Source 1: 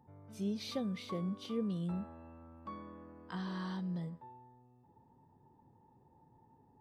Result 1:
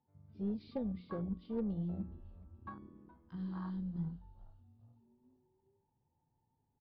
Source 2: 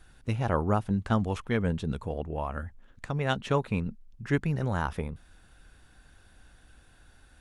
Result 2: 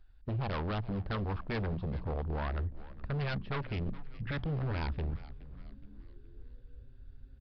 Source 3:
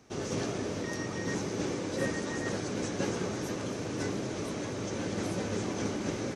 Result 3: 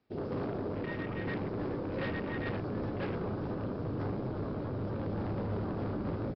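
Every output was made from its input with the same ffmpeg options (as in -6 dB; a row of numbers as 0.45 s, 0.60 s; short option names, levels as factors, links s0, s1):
-filter_complex "[0:a]afwtdn=0.0112,bandreject=f=60:t=h:w=6,bandreject=f=120:t=h:w=6,bandreject=f=180:t=h:w=6,asubboost=boost=2.5:cutoff=160,acrossover=split=890[s0][s1];[s0]alimiter=limit=0.0668:level=0:latency=1:release=28[s2];[s2][s1]amix=inputs=2:normalize=0,asoftclip=type=tanh:threshold=0.075,aeval=exprs='0.075*(cos(1*acos(clip(val(0)/0.075,-1,1)))-cos(1*PI/2))+0.00168*(cos(6*acos(clip(val(0)/0.075,-1,1)))-cos(6*PI/2))':c=same,aeval=exprs='0.0355*(abs(mod(val(0)/0.0355+3,4)-2)-1)':c=same,aeval=exprs='0.0376*(cos(1*acos(clip(val(0)/0.0376,-1,1)))-cos(1*PI/2))+0.000531*(cos(7*acos(clip(val(0)/0.0376,-1,1)))-cos(7*PI/2))':c=same,asplit=2[s3][s4];[s4]asplit=4[s5][s6][s7][s8];[s5]adelay=419,afreqshift=-140,volume=0.141[s9];[s6]adelay=838,afreqshift=-280,volume=0.0624[s10];[s7]adelay=1257,afreqshift=-420,volume=0.0272[s11];[s8]adelay=1676,afreqshift=-560,volume=0.012[s12];[s9][s10][s11][s12]amix=inputs=4:normalize=0[s13];[s3][s13]amix=inputs=2:normalize=0,aresample=11025,aresample=44100"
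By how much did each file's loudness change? -1.0 LU, -6.0 LU, -2.0 LU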